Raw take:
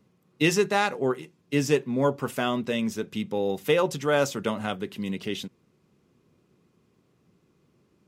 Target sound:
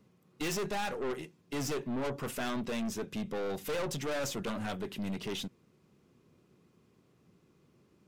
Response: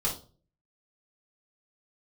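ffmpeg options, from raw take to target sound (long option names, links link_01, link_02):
-af "aeval=exprs='(tanh(39.8*val(0)+0.3)-tanh(0.3))/39.8':channel_layout=same"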